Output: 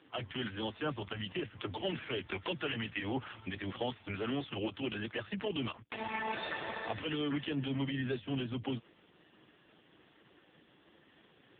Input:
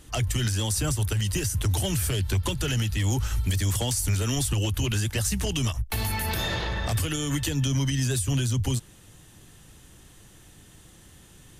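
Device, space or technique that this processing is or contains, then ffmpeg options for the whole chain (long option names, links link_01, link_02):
telephone: -filter_complex "[0:a]asettb=1/sr,asplit=3[link_01][link_02][link_03];[link_01]atrim=end=1.834[link_04];[link_02]atrim=start=1.83:end=3.06,asetpts=PTS-STARTPTS,afade=type=in:duration=0.004:curve=qsin,afade=type=out:start_time=1.226:duration=0.004:curve=qsin,equalizer=frequency=2100:width_type=o:width=0.77:gain=4[link_05];[link_03]atrim=start=3.056[link_06];[link_04][link_05]acrossfade=duration=0.004:curve1=hsin:curve2=qsin[link_07];[link_07][link_06]acrossfade=duration=0.004:curve1=qsin:curve2=hsin,highpass=280,lowpass=3600,asoftclip=type=tanh:threshold=-23.5dB" -ar 8000 -c:a libopencore_amrnb -b:a 4750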